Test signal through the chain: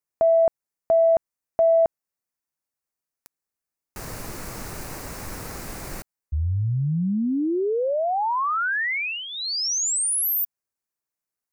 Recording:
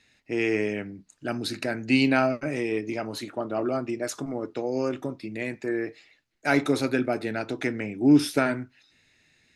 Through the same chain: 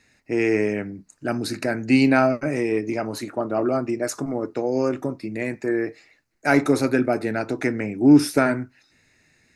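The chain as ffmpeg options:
ffmpeg -i in.wav -af "equalizer=frequency=3300:width=2.4:gain=-12.5,acontrast=30" out.wav

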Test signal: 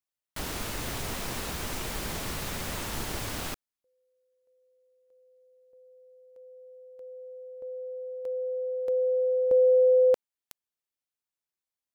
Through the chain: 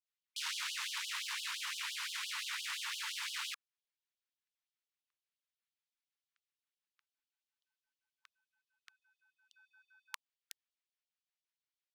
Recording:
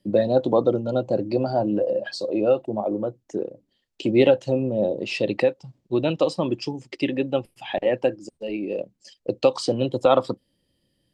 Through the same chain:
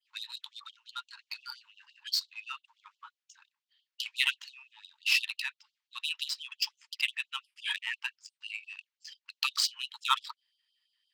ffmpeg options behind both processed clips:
ffmpeg -i in.wav -af "tiltshelf=frequency=1200:gain=-8.5,adynamicsmooth=sensitivity=3.5:basefreq=3400,adynamicequalizer=threshold=0.00631:dfrequency=5900:dqfactor=0.76:tfrequency=5900:tqfactor=0.76:attack=5:release=100:ratio=0.375:range=2:mode=cutabove:tftype=bell,afftfilt=real='re*gte(b*sr/1024,820*pow(2900/820,0.5+0.5*sin(2*PI*5.8*pts/sr)))':imag='im*gte(b*sr/1024,820*pow(2900/820,0.5+0.5*sin(2*PI*5.8*pts/sr)))':win_size=1024:overlap=0.75,volume=-1dB" out.wav

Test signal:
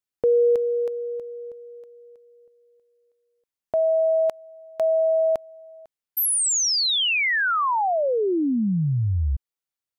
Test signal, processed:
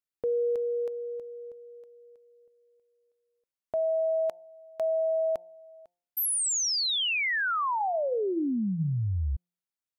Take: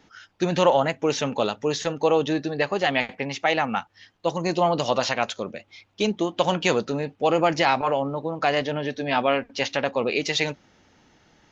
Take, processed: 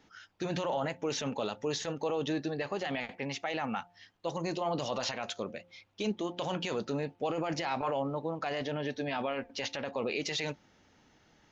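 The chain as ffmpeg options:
ffmpeg -i in.wav -af "alimiter=limit=-17.5dB:level=0:latency=1:release=15,bandreject=frequency=175.8:width_type=h:width=4,bandreject=frequency=351.6:width_type=h:width=4,bandreject=frequency=527.4:width_type=h:width=4,bandreject=frequency=703.2:width_type=h:width=4,bandreject=frequency=879:width_type=h:width=4,volume=-6dB" out.wav

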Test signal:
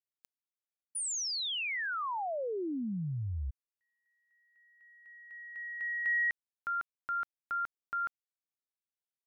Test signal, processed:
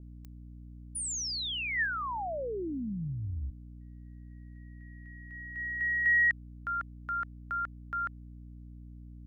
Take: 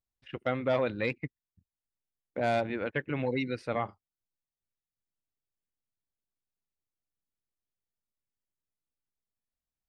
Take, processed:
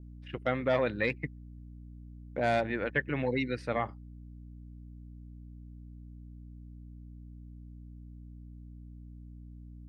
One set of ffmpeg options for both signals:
ffmpeg -i in.wav -af "aeval=exprs='val(0)+0.00501*(sin(2*PI*60*n/s)+sin(2*PI*2*60*n/s)/2+sin(2*PI*3*60*n/s)/3+sin(2*PI*4*60*n/s)/4+sin(2*PI*5*60*n/s)/5)':channel_layout=same,adynamicequalizer=threshold=0.00251:dfrequency=1800:dqfactor=5.9:tfrequency=1800:tqfactor=5.9:attack=5:release=100:ratio=0.375:range=4:mode=boostabove:tftype=bell" out.wav

